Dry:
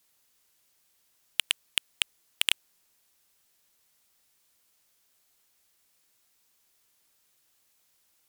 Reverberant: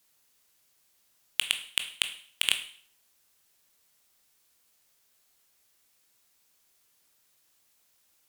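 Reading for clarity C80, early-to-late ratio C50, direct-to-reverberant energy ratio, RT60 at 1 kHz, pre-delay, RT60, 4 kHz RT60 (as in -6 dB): 14.5 dB, 11.5 dB, 7.0 dB, 0.50 s, 16 ms, 0.50 s, 0.50 s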